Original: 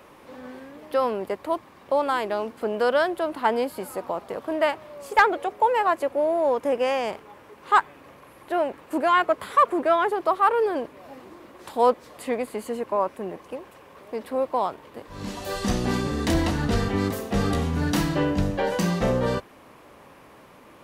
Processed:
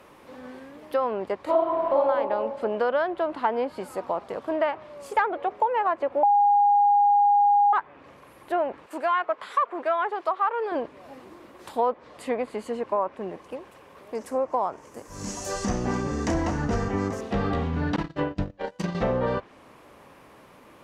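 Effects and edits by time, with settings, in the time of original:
1.44–1.97 reverb throw, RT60 1.4 s, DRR -10 dB
6.23–7.73 bleep 817 Hz -8.5 dBFS
8.86–10.72 HPF 840 Hz 6 dB/oct
14.15–17.21 resonant high shelf 4900 Hz +9 dB, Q 3
17.96–18.95 gate -23 dBFS, range -28 dB
whole clip: treble ducked by the level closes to 3000 Hz, closed at -21 dBFS; dynamic EQ 850 Hz, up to +5 dB, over -31 dBFS, Q 0.76; compressor 3:1, threshold -20 dBFS; gain -1.5 dB

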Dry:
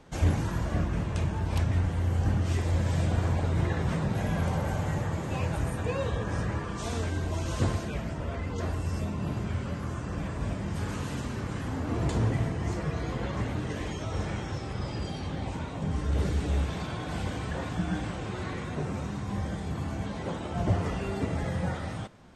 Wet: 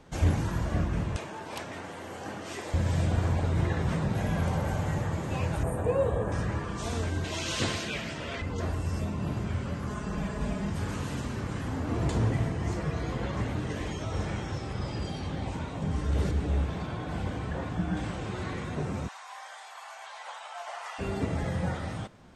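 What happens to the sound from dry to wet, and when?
1.16–2.74 HPF 370 Hz
5.63–6.32 EQ curve 270 Hz 0 dB, 550 Hz +7 dB, 5600 Hz -15 dB, 8300 Hz +1 dB
7.24–8.42 weighting filter D
9.87–10.7 comb 4.8 ms, depth 68%
16.31–17.97 high shelf 2700 Hz -8 dB
19.08–20.99 steep high-pass 730 Hz

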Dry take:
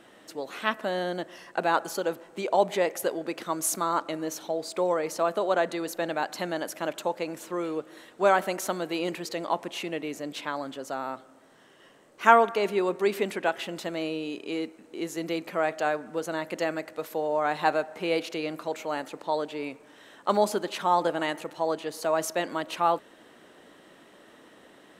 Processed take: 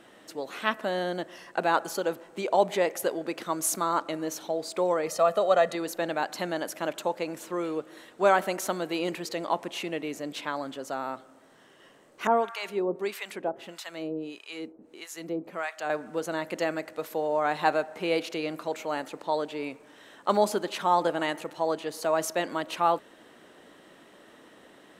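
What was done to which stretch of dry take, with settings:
5.07–5.75 comb 1.6 ms
12.27–15.9 harmonic tremolo 1.6 Hz, depth 100%, crossover 840 Hz

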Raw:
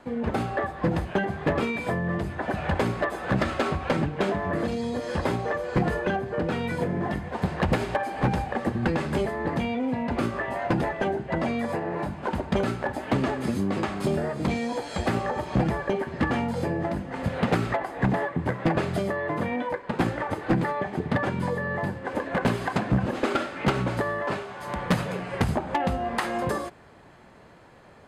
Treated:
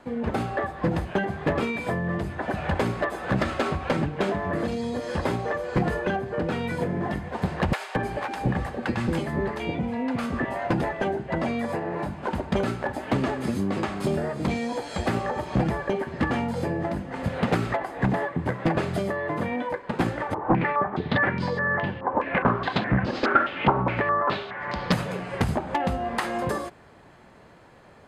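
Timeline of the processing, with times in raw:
7.73–10.45 bands offset in time highs, lows 0.22 s, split 640 Hz
20.34–24.92 stepped low-pass 4.8 Hz 970–4800 Hz

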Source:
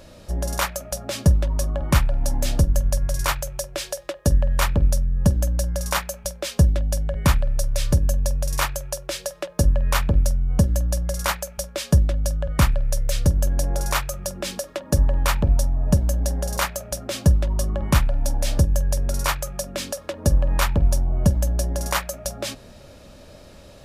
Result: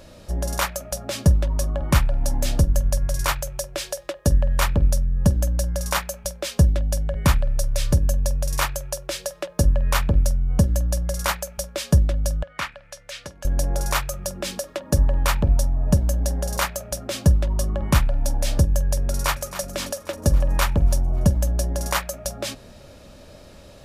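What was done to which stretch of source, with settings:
12.43–13.45 band-pass 2100 Hz, Q 0.85
19.09–19.62 echo throw 0.27 s, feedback 65%, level -12 dB

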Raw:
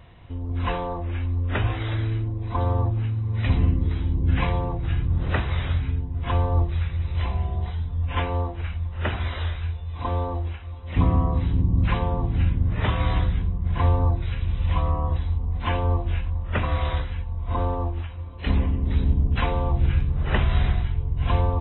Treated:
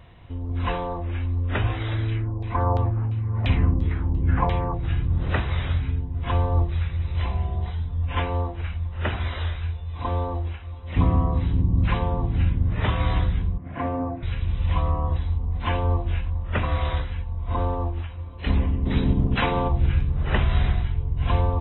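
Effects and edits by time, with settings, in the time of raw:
2.08–4.74 LFO low-pass saw down 2.9 Hz 720–3600 Hz
13.58–14.23 speaker cabinet 180–2400 Hz, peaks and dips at 190 Hz -5 dB, 270 Hz +9 dB, 400 Hz -7 dB, 650 Hz +6 dB, 930 Hz -7 dB
18.85–19.67 spectral limiter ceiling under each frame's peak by 13 dB

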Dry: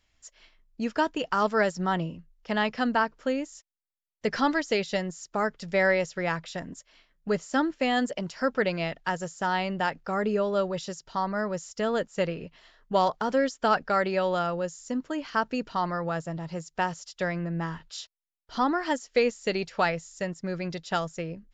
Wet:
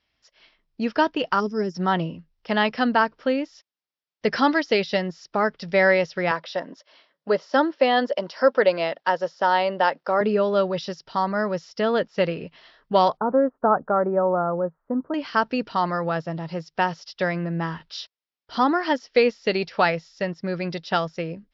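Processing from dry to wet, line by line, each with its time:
1.4–1.75 spectral gain 450–4900 Hz -19 dB
6.31–10.21 speaker cabinet 290–6900 Hz, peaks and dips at 560 Hz +7 dB, 980 Hz +4 dB, 2400 Hz -4 dB
13.17–15.14 steep low-pass 1300 Hz
whole clip: HPF 140 Hz 6 dB/oct; AGC gain up to 6 dB; Chebyshev low-pass 5400 Hz, order 5

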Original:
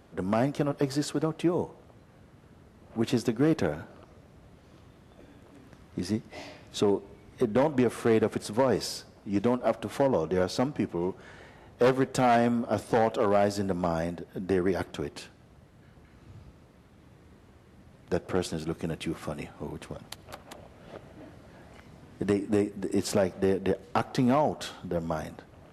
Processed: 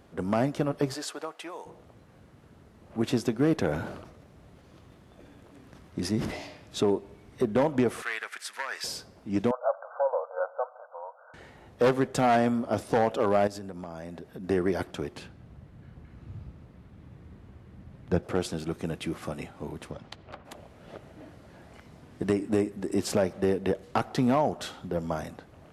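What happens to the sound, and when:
0.93–1.65 HPF 520 Hz -> 1100 Hz
3.58–6.47 sustainer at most 58 dB/s
8.02–8.84 resonant high-pass 1700 Hz, resonance Q 2.2
9.51–11.34 brick-wall FIR band-pass 480–1600 Hz
13.47–14.44 compressor 5:1, threshold -36 dBFS
15.17–18.23 tone controls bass +8 dB, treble -7 dB
19.9–20.44 LPF 6300 Hz -> 2600 Hz

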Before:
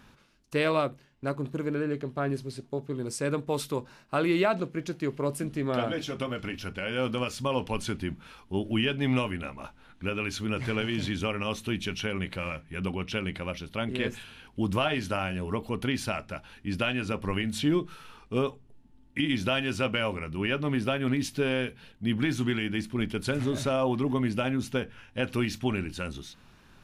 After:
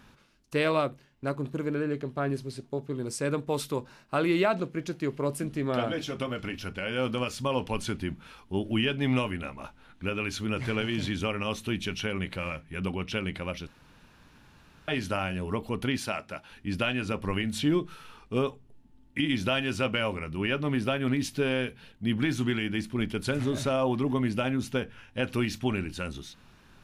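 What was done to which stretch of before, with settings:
13.67–14.88 room tone
15.98–16.51 HPF 220 Hz 6 dB/oct

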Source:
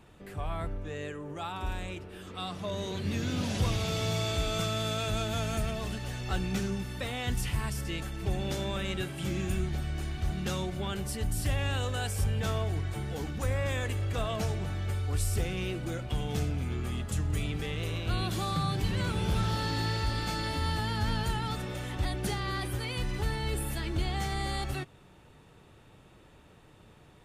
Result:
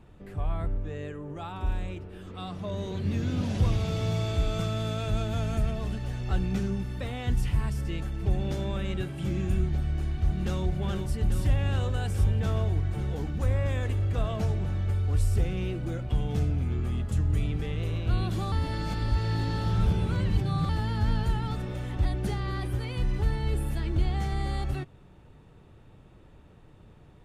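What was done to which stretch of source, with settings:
9.97–10.63 echo throw 0.42 s, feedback 85%, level -6.5 dB
18.52–20.69 reverse
whole clip: tilt -2 dB/oct; gain -2 dB

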